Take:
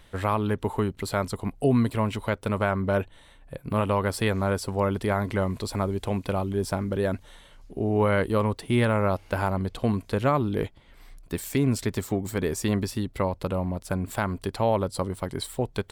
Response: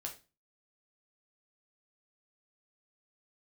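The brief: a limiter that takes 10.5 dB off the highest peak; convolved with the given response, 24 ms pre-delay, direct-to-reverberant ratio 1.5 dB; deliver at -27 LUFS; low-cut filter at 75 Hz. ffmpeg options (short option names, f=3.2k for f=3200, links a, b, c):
-filter_complex "[0:a]highpass=75,alimiter=limit=-20.5dB:level=0:latency=1,asplit=2[a][b];[1:a]atrim=start_sample=2205,adelay=24[c];[b][c]afir=irnorm=-1:irlink=0,volume=0.5dB[d];[a][d]amix=inputs=2:normalize=0,volume=3dB"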